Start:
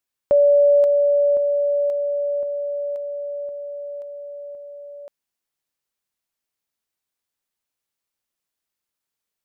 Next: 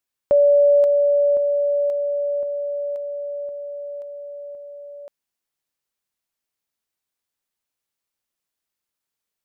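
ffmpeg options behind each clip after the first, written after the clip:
-af anull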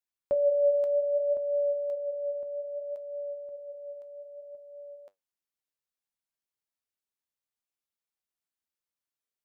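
-af "flanger=delay=8.6:depth=5.8:regen=65:speed=0.62:shape=sinusoidal,volume=0.501"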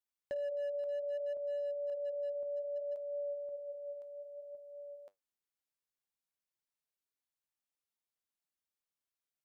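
-af "adynamicequalizer=threshold=0.0141:dfrequency=590:dqfactor=2.4:tfrequency=590:tqfactor=2.4:attack=5:release=100:ratio=0.375:range=1.5:mode=boostabove:tftype=bell,acompressor=threshold=0.0251:ratio=8,asoftclip=type=hard:threshold=0.0299,volume=0.668"

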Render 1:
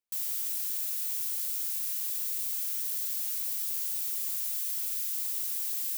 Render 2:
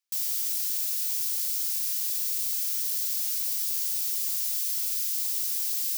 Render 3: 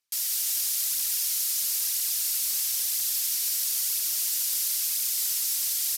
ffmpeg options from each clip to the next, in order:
-af "highpass=1400,equalizer=f=5200:w=1.6:g=5.5,volume=1.5"
-filter_complex "[0:a]asplit=2[s0][s1];[s1]aecho=0:1:191:0.501[s2];[s0][s2]amix=inputs=2:normalize=0,aphaser=in_gain=1:out_gain=1:delay=5:decay=0.39:speed=1:type=triangular,aresample=32000,aresample=44100,volume=1.58"

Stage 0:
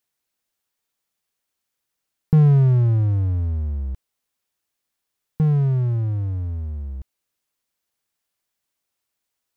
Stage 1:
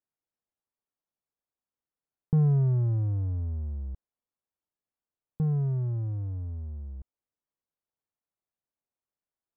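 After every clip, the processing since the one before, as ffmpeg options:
-af "lowpass=1100,volume=0.376"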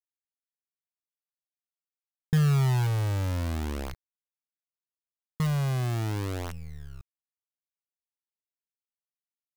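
-af "acrusher=bits=6:dc=4:mix=0:aa=0.000001"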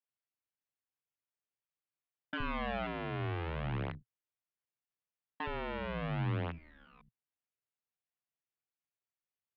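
-filter_complex "[0:a]highpass=f=260:t=q:w=0.5412,highpass=f=260:t=q:w=1.307,lowpass=f=3300:t=q:w=0.5176,lowpass=f=3300:t=q:w=0.7071,lowpass=f=3300:t=q:w=1.932,afreqshift=-180,equalizer=f=120:t=o:w=0.75:g=8.5,acrossover=split=210[s0][s1];[s0]adelay=70[s2];[s2][s1]amix=inputs=2:normalize=0"

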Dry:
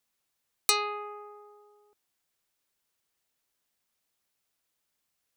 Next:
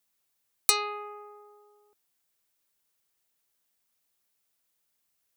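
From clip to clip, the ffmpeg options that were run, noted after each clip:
-af "highshelf=f=8700:g=7,volume=0.891"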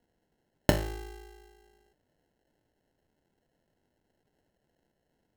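-af "equalizer=f=470:t=o:w=0.43:g=-10.5,acrusher=samples=37:mix=1:aa=0.000001"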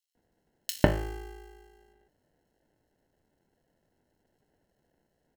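-filter_complex "[0:a]acrossover=split=3100[s0][s1];[s0]adelay=150[s2];[s2][s1]amix=inputs=2:normalize=0,volume=1.26"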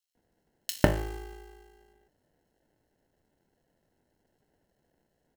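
-af "acrusher=bits=4:mode=log:mix=0:aa=0.000001"

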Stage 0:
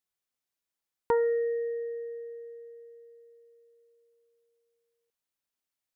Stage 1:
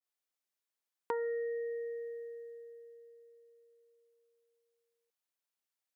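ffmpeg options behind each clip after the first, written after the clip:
-af "highpass=340,acompressor=threshold=0.02:ratio=2,adynamicequalizer=threshold=0.00224:dfrequency=1600:dqfactor=0.7:tfrequency=1600:tqfactor=0.7:attack=5:release=100:ratio=0.375:range=3:mode=boostabove:tftype=highshelf,volume=0.708"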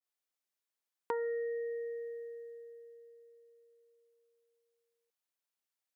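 -af anull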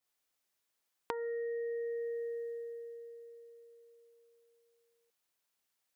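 -af "acompressor=threshold=0.00708:ratio=8,volume=2.37"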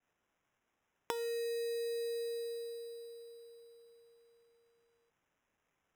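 -af "acrusher=samples=10:mix=1:aa=0.000001"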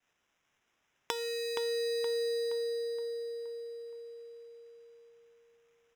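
-filter_complex "[0:a]asplit=2[s0][s1];[s1]adelay=471,lowpass=f=2900:p=1,volume=0.562,asplit=2[s2][s3];[s3]adelay=471,lowpass=f=2900:p=1,volume=0.5,asplit=2[s4][s5];[s5]adelay=471,lowpass=f=2900:p=1,volume=0.5,asplit=2[s6][s7];[s7]adelay=471,lowpass=f=2900:p=1,volume=0.5,asplit=2[s8][s9];[s9]adelay=471,lowpass=f=2900:p=1,volume=0.5,asplit=2[s10][s11];[s11]adelay=471,lowpass=f=2900:p=1,volume=0.5[s12];[s0][s2][s4][s6][s8][s10][s12]amix=inputs=7:normalize=0,acrossover=split=5700[s13][s14];[s13]crystalizer=i=5.5:c=0[s15];[s15][s14]amix=inputs=2:normalize=0"

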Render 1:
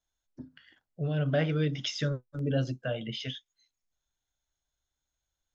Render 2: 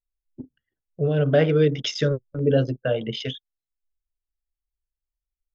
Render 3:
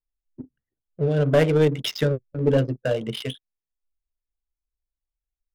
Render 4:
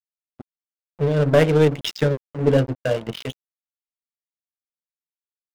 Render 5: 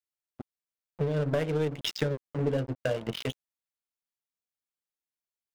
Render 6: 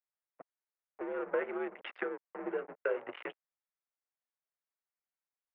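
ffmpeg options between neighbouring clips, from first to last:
-af "anlmdn=0.398,equalizer=f=440:t=o:w=0.62:g=9.5,volume=2"
-af "aeval=exprs='0.473*(cos(1*acos(clip(val(0)/0.473,-1,1)))-cos(1*PI/2))+0.0531*(cos(4*acos(clip(val(0)/0.473,-1,1)))-cos(4*PI/2))+0.0237*(cos(6*acos(clip(val(0)/0.473,-1,1)))-cos(6*PI/2))':c=same,adynamicsmooth=sensitivity=6.5:basefreq=1000"
-af "aeval=exprs='sgn(val(0))*max(abs(val(0))-0.02,0)':c=same,volume=1.5"
-af "acompressor=threshold=0.0631:ratio=5,volume=0.841"
-af "highpass=f=560:t=q:w=0.5412,highpass=f=560:t=q:w=1.307,lowpass=f=2300:t=q:w=0.5176,lowpass=f=2300:t=q:w=0.7071,lowpass=f=2300:t=q:w=1.932,afreqshift=-91"

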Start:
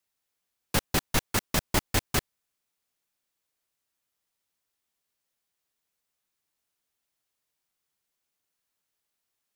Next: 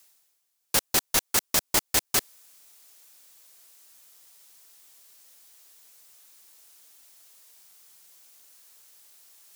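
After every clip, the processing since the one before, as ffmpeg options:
-af "bass=f=250:g=-11,treble=f=4000:g=8,areverse,acompressor=mode=upward:threshold=0.0141:ratio=2.5,areverse"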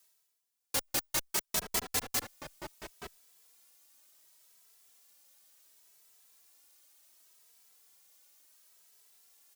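-filter_complex "[0:a]asplit=2[s0][s1];[s1]adelay=874.6,volume=0.501,highshelf=f=4000:g=-19.7[s2];[s0][s2]amix=inputs=2:normalize=0,asplit=2[s3][s4];[s4]adelay=2.7,afreqshift=0.69[s5];[s3][s5]amix=inputs=2:normalize=1,volume=0.531"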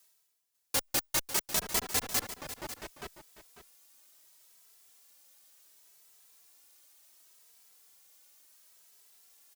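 -af "aecho=1:1:546:0.224,volume=1.26"

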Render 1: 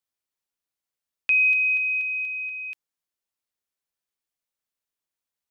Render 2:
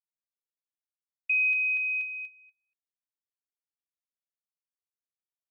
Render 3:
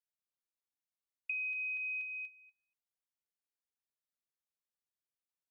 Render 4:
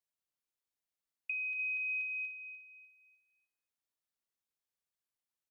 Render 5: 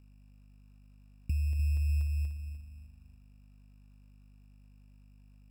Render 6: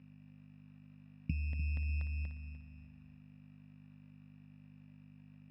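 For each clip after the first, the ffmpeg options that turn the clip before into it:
-filter_complex "[0:a]acrossover=split=2900[s0][s1];[s1]acompressor=threshold=0.0178:ratio=4:attack=1:release=60[s2];[s0][s2]amix=inputs=2:normalize=0,agate=range=0.00447:threshold=0.0398:ratio=16:detection=peak,volume=0.668"
-af "acompressor=threshold=0.0251:ratio=6,volume=0.596"
-af "aecho=1:1:298|596|894|1192:0.266|0.0931|0.0326|0.0114"
-af "aeval=exprs='val(0)+0.000631*(sin(2*PI*50*n/s)+sin(2*PI*2*50*n/s)/2+sin(2*PI*3*50*n/s)/3+sin(2*PI*4*50*n/s)/4+sin(2*PI*5*50*n/s)/5)':c=same,acrusher=samples=17:mix=1:aa=0.000001,volume=2.51"
-af "highpass=130,equalizer=f=160:t=q:w=4:g=9,equalizer=f=260:t=q:w=4:g=7,equalizer=f=380:t=q:w=4:g=-9,equalizer=f=560:t=q:w=4:g=3,equalizer=f=1900:t=q:w=4:g=9,lowpass=f=3900:w=0.5412,lowpass=f=3900:w=1.3066,volume=1.41"

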